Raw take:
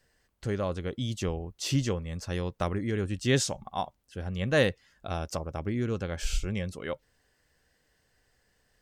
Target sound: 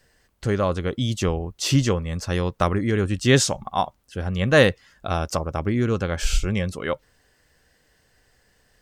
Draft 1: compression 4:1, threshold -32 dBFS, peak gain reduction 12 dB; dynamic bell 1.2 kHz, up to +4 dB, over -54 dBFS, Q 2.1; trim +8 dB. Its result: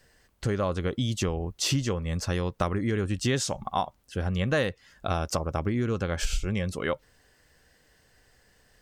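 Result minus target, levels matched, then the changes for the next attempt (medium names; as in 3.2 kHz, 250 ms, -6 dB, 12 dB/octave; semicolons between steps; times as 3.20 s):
compression: peak gain reduction +12 dB
remove: compression 4:1, threshold -32 dBFS, peak gain reduction 12 dB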